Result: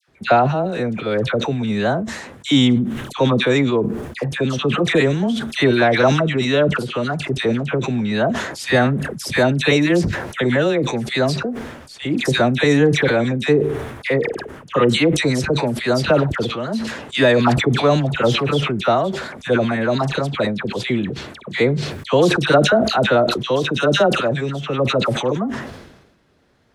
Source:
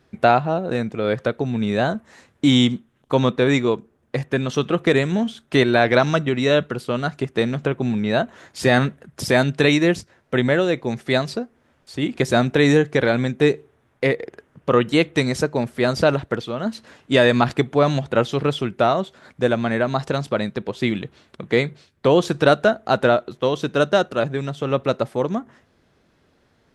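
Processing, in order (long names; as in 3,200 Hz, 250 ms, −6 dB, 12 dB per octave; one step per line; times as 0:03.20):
all-pass dispersion lows, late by 83 ms, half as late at 1,300 Hz
level that may fall only so fast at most 54 dB per second
level +1 dB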